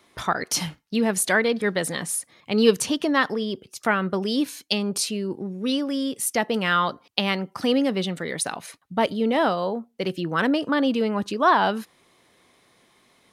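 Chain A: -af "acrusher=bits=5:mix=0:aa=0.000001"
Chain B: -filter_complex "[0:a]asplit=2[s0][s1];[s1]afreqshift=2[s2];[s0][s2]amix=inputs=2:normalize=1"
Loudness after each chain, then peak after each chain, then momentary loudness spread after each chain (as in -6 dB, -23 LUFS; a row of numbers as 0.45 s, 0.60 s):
-24.0 LUFS, -27.0 LUFS; -4.0 dBFS, -4.5 dBFS; 9 LU, 9 LU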